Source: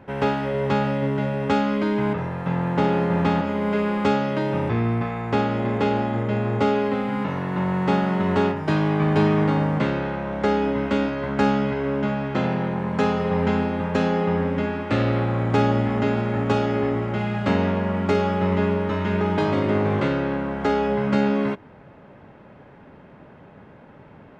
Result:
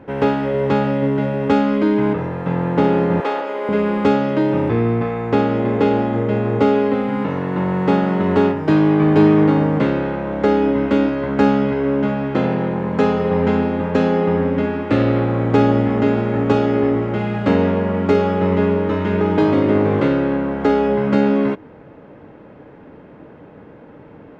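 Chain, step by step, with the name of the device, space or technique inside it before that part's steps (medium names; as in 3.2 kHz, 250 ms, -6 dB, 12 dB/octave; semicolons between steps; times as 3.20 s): inside a helmet (treble shelf 4.9 kHz -6 dB; small resonant body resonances 310/460 Hz, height 9 dB, ringing for 45 ms); 3.20–3.69 s: high-pass 410 Hz 24 dB/octave; trim +2.5 dB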